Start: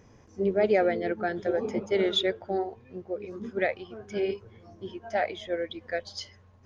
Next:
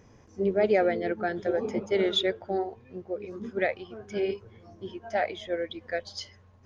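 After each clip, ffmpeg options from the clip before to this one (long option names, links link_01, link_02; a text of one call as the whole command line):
ffmpeg -i in.wav -af anull out.wav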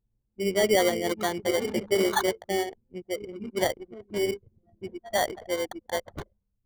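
ffmpeg -i in.wav -af "dynaudnorm=framelen=290:gausssize=3:maxgain=8dB,acrusher=samples=17:mix=1:aa=0.000001,anlmdn=25.1,volume=-6.5dB" out.wav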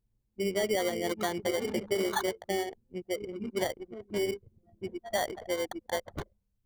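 ffmpeg -i in.wav -af "acompressor=threshold=-28dB:ratio=3" out.wav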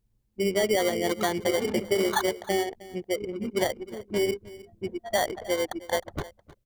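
ffmpeg -i in.wav -af "aecho=1:1:311:0.112,volume=5dB" out.wav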